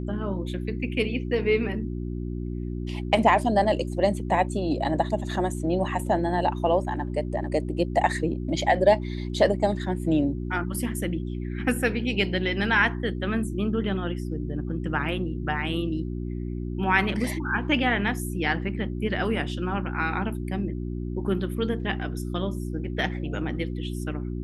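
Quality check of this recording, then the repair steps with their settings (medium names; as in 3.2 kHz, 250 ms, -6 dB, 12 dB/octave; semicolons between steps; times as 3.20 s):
hum 60 Hz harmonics 6 -31 dBFS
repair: de-hum 60 Hz, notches 6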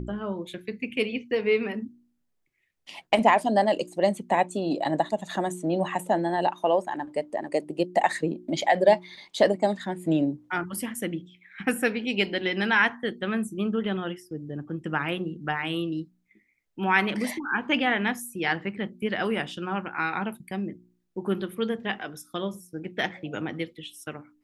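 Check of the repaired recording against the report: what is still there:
nothing left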